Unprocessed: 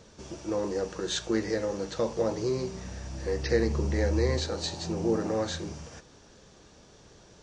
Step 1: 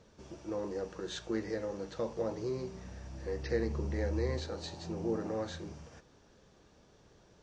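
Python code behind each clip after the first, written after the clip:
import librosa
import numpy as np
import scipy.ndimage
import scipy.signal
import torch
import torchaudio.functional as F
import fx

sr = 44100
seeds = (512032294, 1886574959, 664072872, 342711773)

y = fx.high_shelf(x, sr, hz=4600.0, db=-9.0)
y = y * librosa.db_to_amplitude(-7.0)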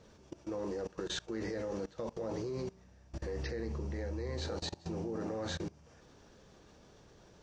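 y = fx.level_steps(x, sr, step_db=22)
y = y * librosa.db_to_amplitude(6.5)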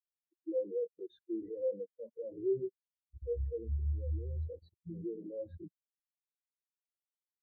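y = fx.spectral_expand(x, sr, expansion=4.0)
y = y * librosa.db_to_amplitude(1.0)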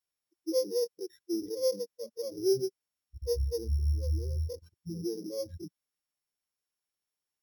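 y = np.r_[np.sort(x[:len(x) // 8 * 8].reshape(-1, 8), axis=1).ravel(), x[len(x) // 8 * 8:]]
y = y * librosa.db_to_amplitude(5.5)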